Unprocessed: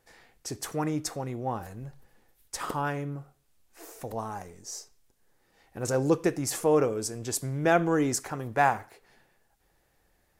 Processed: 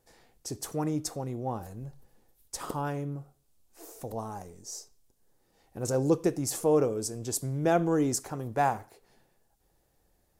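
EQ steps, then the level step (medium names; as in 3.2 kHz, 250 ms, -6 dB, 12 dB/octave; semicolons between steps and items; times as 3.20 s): peaking EQ 1.9 kHz -9 dB 1.7 oct; 0.0 dB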